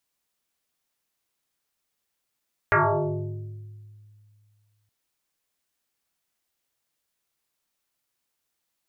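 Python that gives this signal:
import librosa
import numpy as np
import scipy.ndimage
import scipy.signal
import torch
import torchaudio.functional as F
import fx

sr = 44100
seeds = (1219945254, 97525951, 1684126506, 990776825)

y = fx.fm2(sr, length_s=2.17, level_db=-15.0, carrier_hz=105.0, ratio=2.43, index=7.5, index_s=1.78, decay_s=2.38, shape='exponential')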